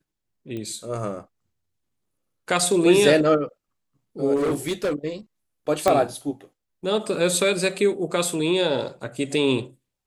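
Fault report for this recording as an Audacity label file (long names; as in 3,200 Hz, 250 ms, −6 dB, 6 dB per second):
0.570000	0.570000	click −22 dBFS
4.350000	5.080000	clipping −19.5 dBFS
5.880000	5.880000	click −6 dBFS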